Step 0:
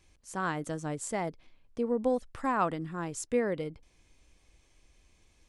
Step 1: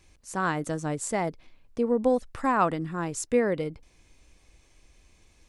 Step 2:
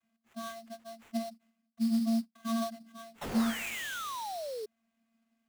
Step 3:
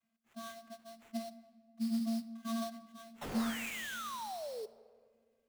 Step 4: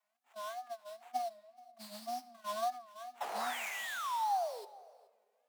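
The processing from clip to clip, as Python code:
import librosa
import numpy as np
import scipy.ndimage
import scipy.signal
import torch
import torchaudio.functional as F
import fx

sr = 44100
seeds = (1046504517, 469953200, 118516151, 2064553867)

y1 = fx.notch(x, sr, hz=3200.0, q=21.0)
y1 = F.gain(torch.from_numpy(y1), 5.0).numpy()
y2 = fx.vocoder(y1, sr, bands=32, carrier='square', carrier_hz=227.0)
y2 = fx.spec_paint(y2, sr, seeds[0], shape='fall', start_s=3.21, length_s=1.45, low_hz=410.0, high_hz=5600.0, level_db=-32.0)
y2 = fx.sample_hold(y2, sr, seeds[1], rate_hz=4900.0, jitter_pct=20)
y2 = F.gain(torch.from_numpy(y2), -6.0).numpy()
y3 = fx.room_shoebox(y2, sr, seeds[2], volume_m3=2400.0, walls='mixed', distance_m=0.44)
y3 = F.gain(torch.from_numpy(y3), -4.0).numpy()
y4 = fx.wow_flutter(y3, sr, seeds[3], rate_hz=2.1, depth_cents=150.0)
y4 = fx.highpass_res(y4, sr, hz=770.0, q=3.6)
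y4 = y4 + 10.0 ** (-24.0 / 20.0) * np.pad(y4, (int(425 * sr / 1000.0), 0))[:len(y4)]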